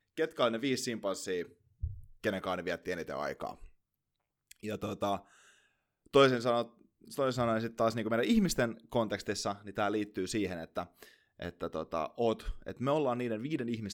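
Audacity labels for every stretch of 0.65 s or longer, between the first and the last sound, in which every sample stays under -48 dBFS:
3.660000	4.510000	silence
5.210000	6.060000	silence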